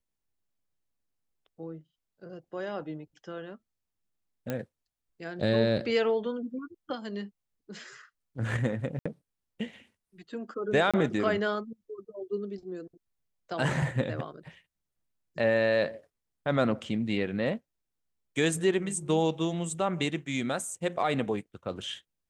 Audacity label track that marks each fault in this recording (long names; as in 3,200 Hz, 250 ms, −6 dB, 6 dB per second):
4.500000	4.500000	click −18 dBFS
8.990000	9.050000	drop-out 65 ms
10.910000	10.940000	drop-out 26 ms